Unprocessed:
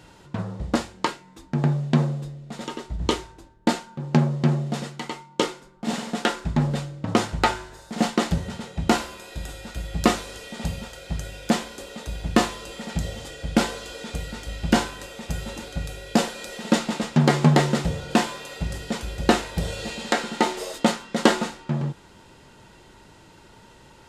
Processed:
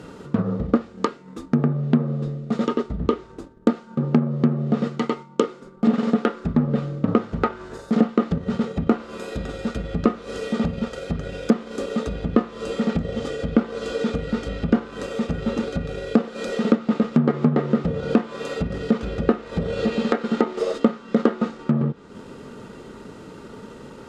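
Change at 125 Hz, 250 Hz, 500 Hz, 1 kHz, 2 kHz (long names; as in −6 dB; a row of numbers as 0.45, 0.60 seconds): −0.5, +4.5, +4.0, −3.5, −5.0 decibels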